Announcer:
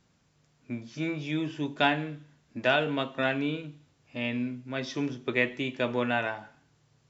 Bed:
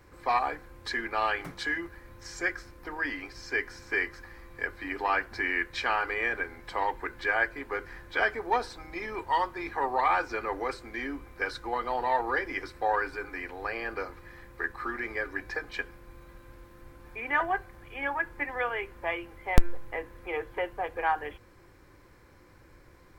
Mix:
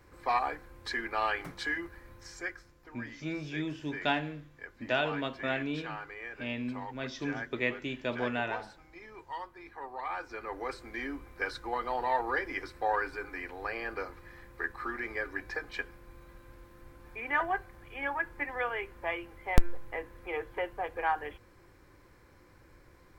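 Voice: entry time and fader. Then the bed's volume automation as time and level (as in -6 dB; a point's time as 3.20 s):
2.25 s, -5.0 dB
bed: 2.12 s -2.5 dB
2.81 s -13.5 dB
9.96 s -13.5 dB
10.84 s -2.5 dB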